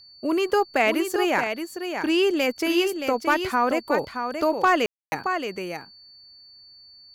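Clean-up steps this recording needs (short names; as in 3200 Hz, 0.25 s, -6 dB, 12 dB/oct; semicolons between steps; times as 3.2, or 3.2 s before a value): clip repair -10.5 dBFS; notch 4500 Hz, Q 30; room tone fill 4.86–5.12; inverse comb 0.623 s -7 dB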